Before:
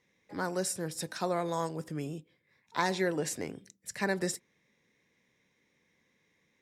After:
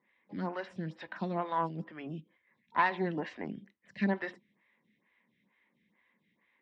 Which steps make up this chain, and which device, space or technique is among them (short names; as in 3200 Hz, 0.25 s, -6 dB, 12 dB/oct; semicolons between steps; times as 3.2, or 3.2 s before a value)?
vibe pedal into a guitar amplifier (photocell phaser 2.2 Hz; tube stage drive 21 dB, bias 0.55; speaker cabinet 75–3500 Hz, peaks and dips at 110 Hz -5 dB, 210 Hz +9 dB, 460 Hz -7 dB, 1000 Hz +6 dB, 1900 Hz +5 dB, 3000 Hz +5 dB); gain +2.5 dB